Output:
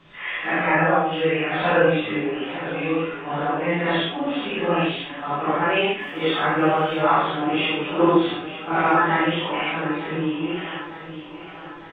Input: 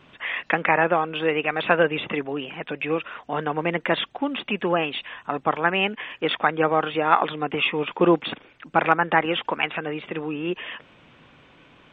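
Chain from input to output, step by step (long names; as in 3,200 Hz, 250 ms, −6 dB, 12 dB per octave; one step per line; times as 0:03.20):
random phases in long frames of 200 ms
0:05.98–0:07.02: surface crackle 280 per second −47 dBFS
repeating echo 904 ms, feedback 58%, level −14 dB
rectangular room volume 47 cubic metres, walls mixed, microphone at 0.73 metres
level −2.5 dB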